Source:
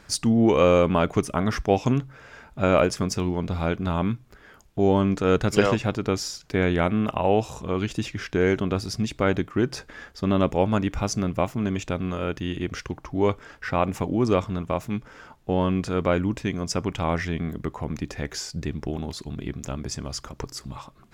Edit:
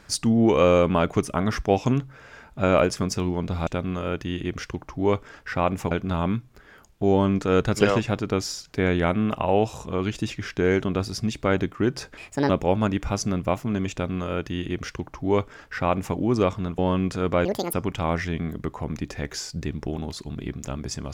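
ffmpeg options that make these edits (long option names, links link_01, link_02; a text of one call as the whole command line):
ffmpeg -i in.wav -filter_complex "[0:a]asplit=8[link_01][link_02][link_03][link_04][link_05][link_06][link_07][link_08];[link_01]atrim=end=3.672[link_09];[link_02]atrim=start=11.828:end=14.072[link_10];[link_03]atrim=start=3.668:end=9.934[link_11];[link_04]atrim=start=9.93:end=10.4,asetpts=PTS-STARTPTS,asetrate=64386,aresample=44100[link_12];[link_05]atrim=start=10.396:end=14.692[link_13];[link_06]atrim=start=15.508:end=16.184[link_14];[link_07]atrim=start=16.18:end=16.74,asetpts=PTS-STARTPTS,asetrate=86436,aresample=44100[link_15];[link_08]atrim=start=16.736[link_16];[link_09][link_10]acrossfade=duration=0.004:curve1=hsin:curve2=hsin[link_17];[link_17][link_11]acrossfade=duration=0.004:curve1=hsin:curve2=hsin[link_18];[link_18][link_12]acrossfade=duration=0.004:curve1=hsin:curve2=hsin[link_19];[link_19][link_13]acrossfade=duration=0.004:curve1=hsin:curve2=hsin[link_20];[link_20][link_14]acrossfade=duration=0.004:curve1=hsin:curve2=hsin[link_21];[link_21][link_15]acrossfade=duration=0.004:curve1=hsin:curve2=hsin[link_22];[link_22][link_16]acrossfade=duration=0.004:curve1=hsin:curve2=hsin" out.wav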